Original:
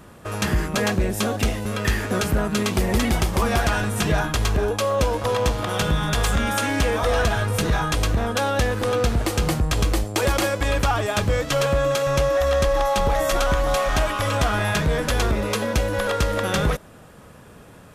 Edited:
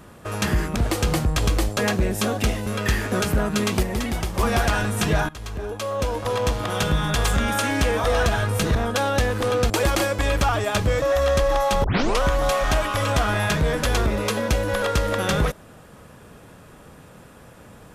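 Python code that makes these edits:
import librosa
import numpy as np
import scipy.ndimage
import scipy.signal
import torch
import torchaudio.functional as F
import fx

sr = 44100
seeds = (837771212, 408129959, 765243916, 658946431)

y = fx.edit(x, sr, fx.clip_gain(start_s=2.82, length_s=0.56, db=-5.0),
    fx.fade_in_from(start_s=4.28, length_s=1.85, curve='qsin', floor_db=-18.0),
    fx.cut(start_s=7.74, length_s=0.42),
    fx.move(start_s=9.11, length_s=1.01, to_s=0.76),
    fx.cut(start_s=11.44, length_s=0.83),
    fx.tape_start(start_s=13.09, length_s=0.38), tone=tone)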